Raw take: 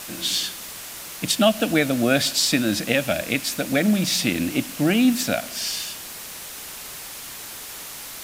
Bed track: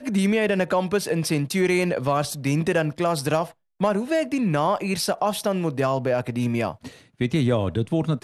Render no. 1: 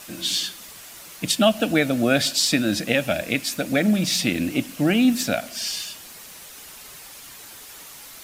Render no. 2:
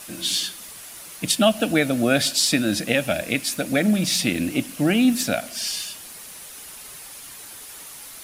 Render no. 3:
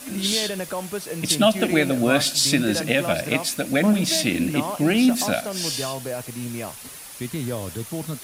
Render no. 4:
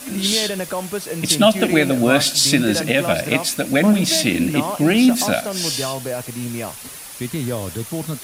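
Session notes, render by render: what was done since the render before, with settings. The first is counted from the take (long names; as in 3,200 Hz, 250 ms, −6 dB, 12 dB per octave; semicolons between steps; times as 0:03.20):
broadband denoise 7 dB, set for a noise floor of −37 dBFS
parametric band 10,000 Hz +7.5 dB 0.32 octaves
mix in bed track −7.5 dB
level +4 dB; brickwall limiter −1 dBFS, peak gain reduction 2.5 dB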